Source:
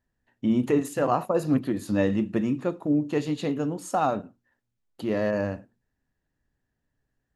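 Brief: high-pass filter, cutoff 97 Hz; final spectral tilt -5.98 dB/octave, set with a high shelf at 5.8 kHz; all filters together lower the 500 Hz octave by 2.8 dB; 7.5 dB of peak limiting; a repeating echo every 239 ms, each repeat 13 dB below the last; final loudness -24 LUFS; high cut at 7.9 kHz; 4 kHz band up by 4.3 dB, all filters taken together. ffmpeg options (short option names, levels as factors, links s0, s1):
-af "highpass=97,lowpass=7900,equalizer=f=500:t=o:g=-3.5,equalizer=f=4000:t=o:g=4.5,highshelf=f=5800:g=3.5,alimiter=limit=0.106:level=0:latency=1,aecho=1:1:239|478|717:0.224|0.0493|0.0108,volume=2.11"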